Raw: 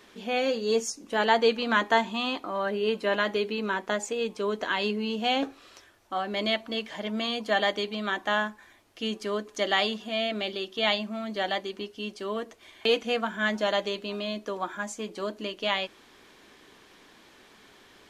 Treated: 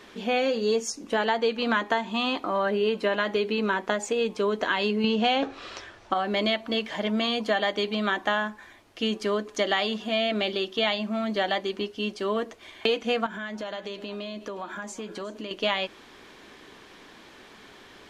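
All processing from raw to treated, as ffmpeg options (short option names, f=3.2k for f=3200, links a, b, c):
-filter_complex "[0:a]asettb=1/sr,asplit=3[a][b][c];[a]atrim=end=5.044[d];[b]atrim=start=5.04:end=6.14,asetpts=PTS-STARTPTS,afade=t=in:d=0.004:c=qsin,afade=t=out:st=1.096:d=0.004:c=qsin,lowpass=6.1k,equalizer=f=280:w=5:g=-4,acontrast=89[e];[c]atrim=start=6.136[f];[d][e]acrossfade=d=0.004:c1=hsin:c2=qsin[g];[g][f]acrossfade=d=0.004:c1=qsin:c2=hsin,asettb=1/sr,asplit=3[h][i][j];[h]atrim=end=13.264[k];[i]atrim=start=13.26:end=15.51,asetpts=PTS-STARTPTS,afade=t=in:d=0.004:c=qsin,afade=t=out:st=2.246:d=0.004:c=qsin,acompressor=threshold=-38dB:ratio=5:attack=3.2:release=140:knee=1:detection=peak,aecho=1:1:363:0.133,atrim=end_sample=99225[l];[j]atrim=start=15.506[m];[k][l]acrossfade=d=0.004:c1=hsin:c2=qsin[n];[n][m]acrossfade=d=0.004:c1=qsin:c2=hsin,highshelf=f=7.3k:g=-8,acompressor=threshold=-27dB:ratio=6,volume=6dB"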